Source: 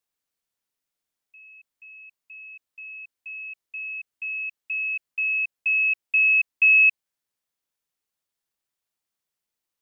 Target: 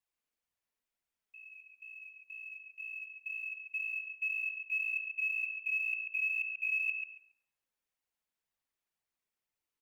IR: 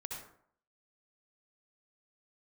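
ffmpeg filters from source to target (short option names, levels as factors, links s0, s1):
-filter_complex "[0:a]equalizer=f=2400:t=o:w=0.73:g=4,areverse,acompressor=threshold=0.0562:ratio=10,areverse,flanger=delay=1:depth=3.7:regen=1:speed=2:shape=sinusoidal,acrusher=bits=9:mode=log:mix=0:aa=0.000001,asplit=2[s0][s1];[s1]adelay=139,lowpass=f=2400:p=1,volume=0.631,asplit=2[s2][s3];[s3]adelay=139,lowpass=f=2400:p=1,volume=0.23,asplit=2[s4][s5];[s5]adelay=139,lowpass=f=2400:p=1,volume=0.23[s6];[s0][s2][s4][s6]amix=inputs=4:normalize=0,asplit=2[s7][s8];[1:a]atrim=start_sample=2205,asetrate=42777,aresample=44100,lowpass=2500[s9];[s8][s9]afir=irnorm=-1:irlink=0,volume=0.596[s10];[s7][s10]amix=inputs=2:normalize=0,volume=0.596"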